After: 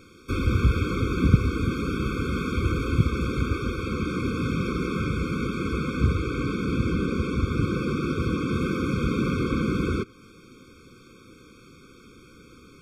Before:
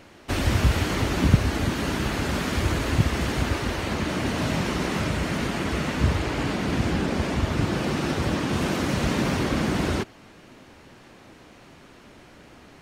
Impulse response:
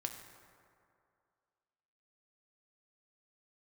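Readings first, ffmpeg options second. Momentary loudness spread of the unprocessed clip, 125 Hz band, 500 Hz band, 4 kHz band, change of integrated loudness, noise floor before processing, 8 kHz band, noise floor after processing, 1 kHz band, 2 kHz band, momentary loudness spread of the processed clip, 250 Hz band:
4 LU, 0.0 dB, -1.5 dB, -8.0 dB, -1.0 dB, -50 dBFS, -10.5 dB, -51 dBFS, -4.0 dB, -4.0 dB, 5 LU, 0.0 dB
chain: -filter_complex "[0:a]acrossover=split=3000[a][b];[b]acompressor=threshold=-49dB:ratio=6[c];[a][c]amix=inputs=2:normalize=0,highshelf=f=3k:g=3,afftfilt=real='re*eq(mod(floor(b*sr/1024/530),2),0)':imag='im*eq(mod(floor(b*sr/1024/530),2),0)':win_size=1024:overlap=0.75"

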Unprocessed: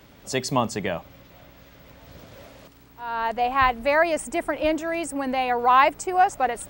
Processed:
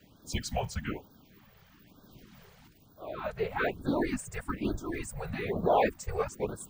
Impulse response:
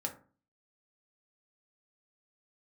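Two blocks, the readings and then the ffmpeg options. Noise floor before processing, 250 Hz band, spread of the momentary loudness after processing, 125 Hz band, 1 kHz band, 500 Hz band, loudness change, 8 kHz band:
-52 dBFS, -5.0 dB, 11 LU, -0.5 dB, -14.0 dB, -7.0 dB, -10.0 dB, -8.0 dB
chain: -af "afreqshift=-320,afftfilt=real='hypot(re,im)*cos(2*PI*random(0))':imag='hypot(re,im)*sin(2*PI*random(1))':win_size=512:overlap=0.75,afftfilt=real='re*(1-between(b*sr/1024,250*pow(2400/250,0.5+0.5*sin(2*PI*1.1*pts/sr))/1.41,250*pow(2400/250,0.5+0.5*sin(2*PI*1.1*pts/sr))*1.41))':imag='im*(1-between(b*sr/1024,250*pow(2400/250,0.5+0.5*sin(2*PI*1.1*pts/sr))/1.41,250*pow(2400/250,0.5+0.5*sin(2*PI*1.1*pts/sr))*1.41))':win_size=1024:overlap=0.75,volume=-2dB"

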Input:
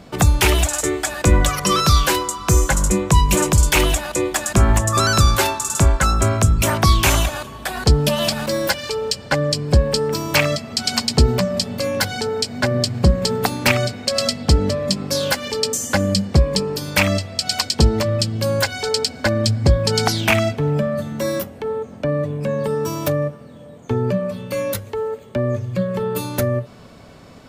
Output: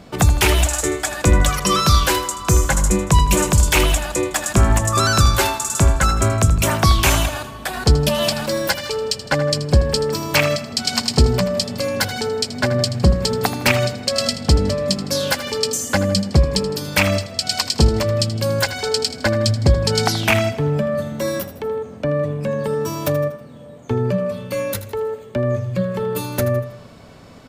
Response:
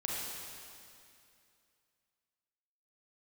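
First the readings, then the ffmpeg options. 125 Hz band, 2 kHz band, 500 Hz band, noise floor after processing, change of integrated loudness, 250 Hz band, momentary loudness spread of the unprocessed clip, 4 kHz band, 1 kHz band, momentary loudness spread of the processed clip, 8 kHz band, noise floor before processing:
+0.5 dB, +0.5 dB, +0.5 dB, -39 dBFS, 0.0 dB, 0.0 dB, 8 LU, 0.0 dB, 0.0 dB, 8 LU, 0.0 dB, -40 dBFS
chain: -af "aecho=1:1:80|160|240|320:0.211|0.093|0.0409|0.018"

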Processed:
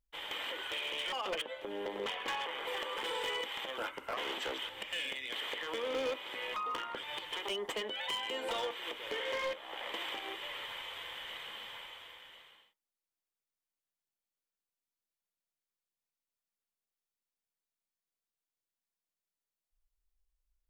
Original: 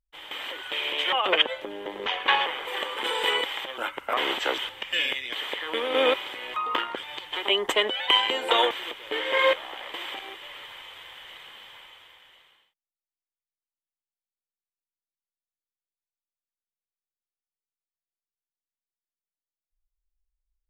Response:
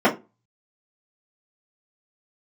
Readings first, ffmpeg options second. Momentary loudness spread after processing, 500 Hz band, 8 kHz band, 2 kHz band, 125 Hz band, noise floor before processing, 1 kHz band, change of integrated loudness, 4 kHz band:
7 LU, -10.5 dB, -5.5 dB, -11.5 dB, n/a, under -85 dBFS, -11.5 dB, -12.0 dB, -11.5 dB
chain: -filter_complex "[0:a]acompressor=threshold=-38dB:ratio=3,asoftclip=type=hard:threshold=-32.5dB,asplit=2[a][b];[1:a]atrim=start_sample=2205[c];[b][c]afir=irnorm=-1:irlink=0,volume=-31.5dB[d];[a][d]amix=inputs=2:normalize=0"

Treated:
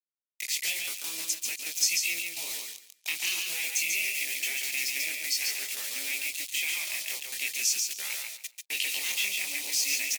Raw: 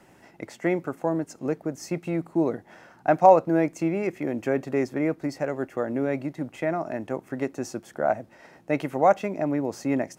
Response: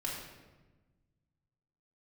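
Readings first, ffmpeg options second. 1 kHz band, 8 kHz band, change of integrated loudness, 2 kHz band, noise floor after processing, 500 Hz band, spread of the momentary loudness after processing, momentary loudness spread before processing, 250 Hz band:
-27.5 dB, +19.5 dB, -2.5 dB, +6.0 dB, -69 dBFS, -30.0 dB, 8 LU, 11 LU, -30.0 dB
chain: -filter_complex "[0:a]aeval=exprs='if(lt(val(0),0),0.708*val(0),val(0))':c=same,bandpass=f=2.4k:t=q:w=1.7:csg=0,afftfilt=real='re*lt(hypot(re,im),0.0501)':imag='im*lt(hypot(re,im),0.0501)':win_size=1024:overlap=0.75,flanger=delay=17.5:depth=7.8:speed=0.48,agate=range=-49dB:threshold=-57dB:ratio=16:detection=peak,aeval=exprs='val(0)+0.000631*sin(2*PI*2400*n/s)':c=same,aemphasis=mode=production:type=75kf,acrusher=bits=8:mix=0:aa=0.000001,acompressor=threshold=-50dB:ratio=1.5,aexciter=amount=11.8:drive=6.8:freq=2.3k,asplit=2[a][b];[b]aecho=0:1:141|282|423:0.631|0.126|0.0252[c];[a][c]amix=inputs=2:normalize=0" -ar 48000 -c:a libmp3lame -b:a 80k

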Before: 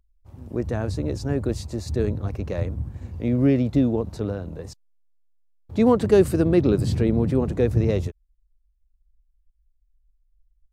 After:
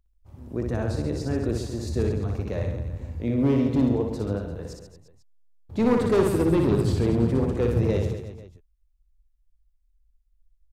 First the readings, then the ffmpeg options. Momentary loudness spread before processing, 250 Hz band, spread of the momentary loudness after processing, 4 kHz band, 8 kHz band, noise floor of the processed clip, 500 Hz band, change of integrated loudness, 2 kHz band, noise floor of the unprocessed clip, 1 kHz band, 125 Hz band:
14 LU, -2.0 dB, 13 LU, -1.0 dB, -1.0 dB, -66 dBFS, -2.5 dB, -2.0 dB, -0.5 dB, -67 dBFS, -0.5 dB, -1.5 dB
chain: -af "volume=14dB,asoftclip=hard,volume=-14dB,aecho=1:1:60|135|228.8|345.9|492.4:0.631|0.398|0.251|0.158|0.1,volume=-3dB"

